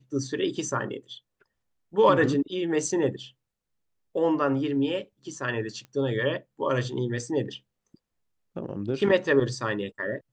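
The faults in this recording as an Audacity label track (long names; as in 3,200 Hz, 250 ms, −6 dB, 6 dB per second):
5.850000	5.850000	click −30 dBFS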